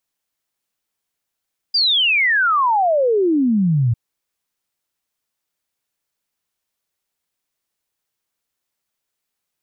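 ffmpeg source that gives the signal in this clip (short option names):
-f lavfi -i "aevalsrc='0.224*clip(min(t,2.2-t)/0.01,0,1)*sin(2*PI*4900*2.2/log(110/4900)*(exp(log(110/4900)*t/2.2)-1))':d=2.2:s=44100"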